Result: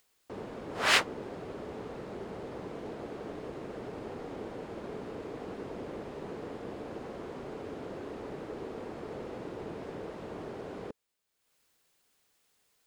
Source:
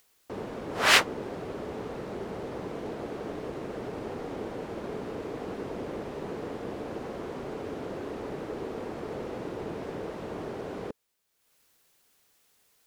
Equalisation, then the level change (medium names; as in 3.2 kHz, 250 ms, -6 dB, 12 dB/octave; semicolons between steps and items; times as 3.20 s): peaking EQ 13 kHz -7 dB 0.36 oct; band-stop 5.8 kHz, Q 29; -4.5 dB